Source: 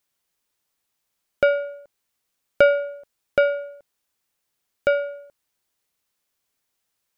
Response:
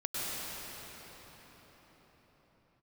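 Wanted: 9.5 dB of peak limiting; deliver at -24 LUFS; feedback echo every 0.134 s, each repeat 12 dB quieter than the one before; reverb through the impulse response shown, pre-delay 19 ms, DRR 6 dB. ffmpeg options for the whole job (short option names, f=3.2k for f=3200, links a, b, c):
-filter_complex "[0:a]alimiter=limit=-13dB:level=0:latency=1,aecho=1:1:134|268|402:0.251|0.0628|0.0157,asplit=2[a][b];[1:a]atrim=start_sample=2205,adelay=19[c];[b][c]afir=irnorm=-1:irlink=0,volume=-12.5dB[d];[a][d]amix=inputs=2:normalize=0,volume=3dB"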